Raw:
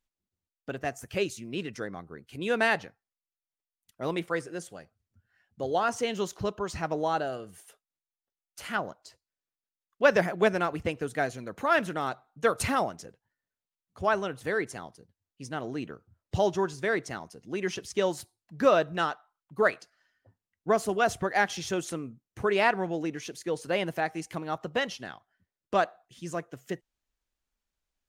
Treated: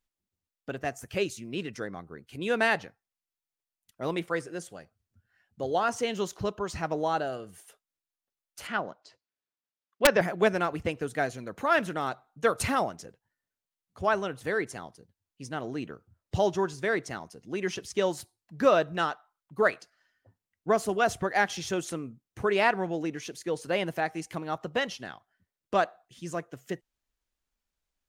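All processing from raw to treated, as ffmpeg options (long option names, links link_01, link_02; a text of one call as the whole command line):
ffmpeg -i in.wav -filter_complex "[0:a]asettb=1/sr,asplit=3[link_01][link_02][link_03];[link_01]atrim=end=8.674[link_04];[link_02]atrim=start=8.67:end=10.21,asetpts=PTS-STARTPTS,afade=type=in:duration=0.004:curve=qsin,afade=type=out:start_time=1.536:duration=0.004:curve=qsin,highpass=140,lowpass=4700,aeval=exprs='(mod(3.16*val(0)+1,2)-1)/3.16':channel_layout=same[link_05];[link_03]atrim=start=10.206[link_06];[link_04][link_05]acrossfade=duration=0.004:curve1=hsin:curve2=qsin[link_07];[link_07][link_06]acrossfade=duration=0.004:curve1=qsin:curve2=hsin" out.wav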